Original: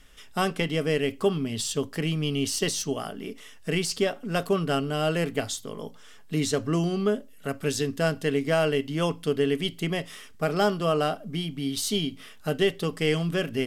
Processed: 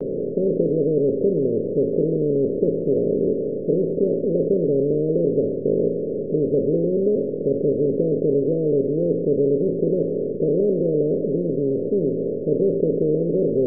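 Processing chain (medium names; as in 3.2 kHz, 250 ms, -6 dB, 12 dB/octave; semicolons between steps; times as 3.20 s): spectral levelling over time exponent 0.2; steep low-pass 550 Hz 96 dB/octave; gate with hold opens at -20 dBFS; bass shelf 410 Hz -10 dB; trim +5.5 dB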